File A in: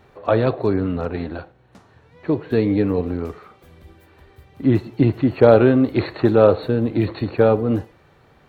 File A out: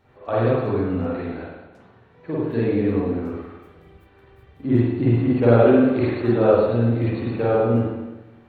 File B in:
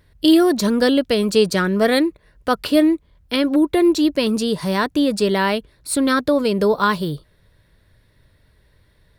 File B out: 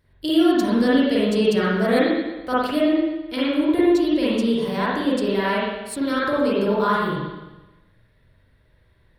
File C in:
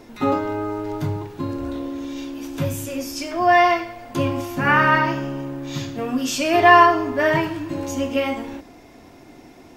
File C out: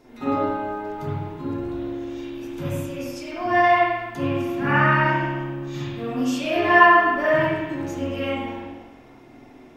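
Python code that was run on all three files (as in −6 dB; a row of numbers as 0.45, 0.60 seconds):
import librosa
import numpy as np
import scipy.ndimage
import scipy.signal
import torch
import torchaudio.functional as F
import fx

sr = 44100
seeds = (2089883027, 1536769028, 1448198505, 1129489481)

y = fx.rev_spring(x, sr, rt60_s=1.1, pass_ms=(43, 51), chirp_ms=70, drr_db=-8.0)
y = F.gain(torch.from_numpy(y), -10.5).numpy()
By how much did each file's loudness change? −1.5, −2.5, −1.5 LU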